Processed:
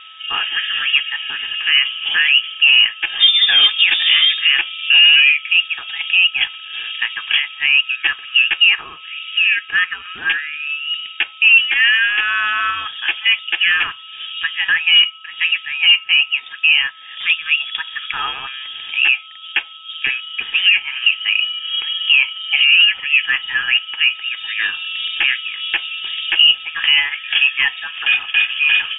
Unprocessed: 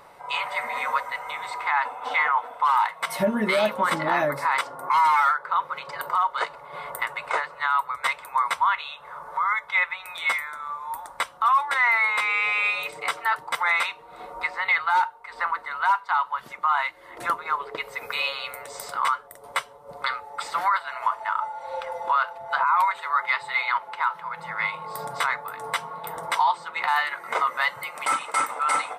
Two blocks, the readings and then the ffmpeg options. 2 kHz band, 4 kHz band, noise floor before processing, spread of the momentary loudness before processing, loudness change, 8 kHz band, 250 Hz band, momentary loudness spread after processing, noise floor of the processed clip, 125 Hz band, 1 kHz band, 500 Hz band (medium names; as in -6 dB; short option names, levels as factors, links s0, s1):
+11.5 dB, +24.0 dB, -47 dBFS, 12 LU, +11.0 dB, under -40 dB, under -10 dB, 12 LU, -37 dBFS, no reading, -10.0 dB, under -15 dB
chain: -filter_complex "[0:a]lowpass=f=3200:t=q:w=0.5098,lowpass=f=3200:t=q:w=0.6013,lowpass=f=3200:t=q:w=0.9,lowpass=f=3200:t=q:w=2.563,afreqshift=-3800,acrossover=split=1200[s0][s1];[s1]crystalizer=i=4.5:c=0[s2];[s0][s2]amix=inputs=2:normalize=0,aeval=exprs='val(0)+0.00501*sin(2*PI*1300*n/s)':c=same,volume=1.41"